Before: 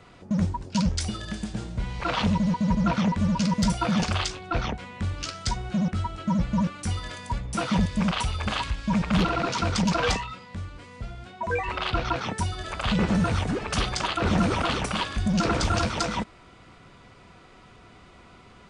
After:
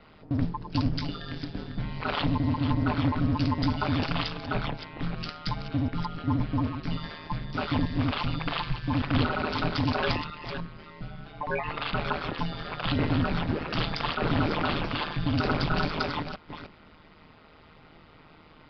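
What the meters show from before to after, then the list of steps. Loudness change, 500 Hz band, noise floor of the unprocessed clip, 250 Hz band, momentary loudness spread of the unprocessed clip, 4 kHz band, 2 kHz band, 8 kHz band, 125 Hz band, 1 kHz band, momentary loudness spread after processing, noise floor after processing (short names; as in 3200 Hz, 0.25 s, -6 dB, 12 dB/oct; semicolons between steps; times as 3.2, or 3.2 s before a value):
-3.0 dB, -2.5 dB, -51 dBFS, -3.5 dB, 10 LU, -3.0 dB, -1.5 dB, under -25 dB, -1.5 dB, -2.5 dB, 10 LU, -54 dBFS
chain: reverse delay 0.303 s, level -9 dB; downsampling 11025 Hz; ring modulator 78 Hz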